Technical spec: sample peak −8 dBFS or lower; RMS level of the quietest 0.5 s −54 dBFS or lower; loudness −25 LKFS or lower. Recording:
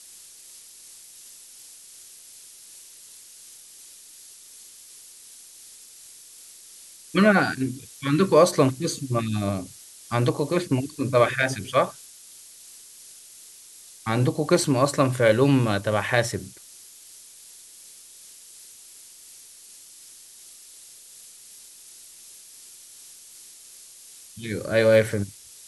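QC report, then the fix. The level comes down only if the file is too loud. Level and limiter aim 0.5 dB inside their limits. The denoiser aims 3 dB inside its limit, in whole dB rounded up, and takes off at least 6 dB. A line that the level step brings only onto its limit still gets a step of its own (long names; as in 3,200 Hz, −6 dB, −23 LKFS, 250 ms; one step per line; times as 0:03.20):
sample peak −4.5 dBFS: out of spec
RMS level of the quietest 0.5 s −47 dBFS: out of spec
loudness −22.5 LKFS: out of spec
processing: broadband denoise 7 dB, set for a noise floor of −47 dBFS
level −3 dB
brickwall limiter −8.5 dBFS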